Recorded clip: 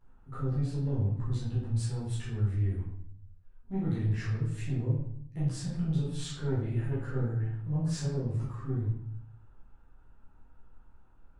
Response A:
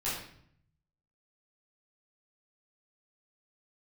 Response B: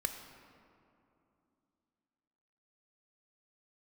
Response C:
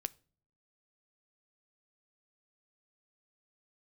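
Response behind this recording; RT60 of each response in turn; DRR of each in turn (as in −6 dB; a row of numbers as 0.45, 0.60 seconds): A; 0.65 s, 2.8 s, non-exponential decay; −10.0, 6.0, 15.0 decibels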